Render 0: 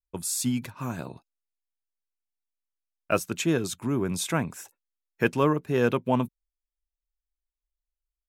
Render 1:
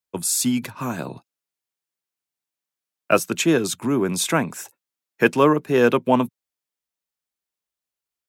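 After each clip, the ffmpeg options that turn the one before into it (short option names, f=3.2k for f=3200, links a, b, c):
-filter_complex "[0:a]acrossover=split=180|6400[a][b][c];[a]acompressor=threshold=-43dB:ratio=6[d];[d][b][c]amix=inputs=3:normalize=0,highpass=f=100:w=0.5412,highpass=f=100:w=1.3066,volume=7.5dB"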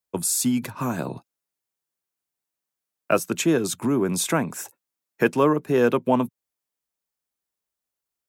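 -filter_complex "[0:a]asplit=2[a][b];[b]acompressor=threshold=-25dB:ratio=6,volume=3dB[c];[a][c]amix=inputs=2:normalize=0,equalizer=f=3.1k:t=o:w=2.1:g=-4.5,volume=-5dB"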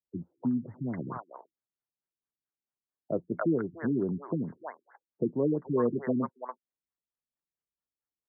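-filter_complex "[0:a]acrossover=split=640|5700[a][b][c];[b]adelay=290[d];[c]adelay=420[e];[a][d][e]amix=inputs=3:normalize=0,afftfilt=real='re*lt(b*sr/1024,360*pow(2200/360,0.5+0.5*sin(2*PI*4.5*pts/sr)))':imag='im*lt(b*sr/1024,360*pow(2200/360,0.5+0.5*sin(2*PI*4.5*pts/sr)))':win_size=1024:overlap=0.75,volume=-6dB"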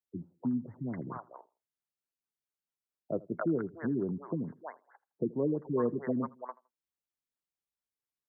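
-filter_complex "[0:a]asplit=2[a][b];[b]adelay=81,lowpass=f=1.7k:p=1,volume=-21.5dB,asplit=2[c][d];[d]adelay=81,lowpass=f=1.7k:p=1,volume=0.28[e];[a][c][e]amix=inputs=3:normalize=0,volume=-3dB"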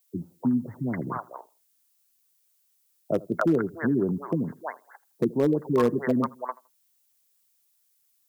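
-af "volume=22.5dB,asoftclip=hard,volume=-22.5dB,crystalizer=i=5.5:c=0,volume=7.5dB"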